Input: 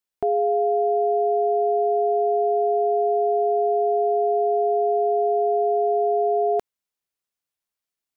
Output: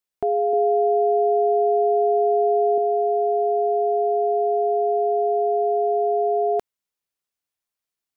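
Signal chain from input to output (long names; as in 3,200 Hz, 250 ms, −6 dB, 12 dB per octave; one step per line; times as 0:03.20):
0:00.53–0:02.78: low shelf with overshoot 270 Hz −10.5 dB, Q 1.5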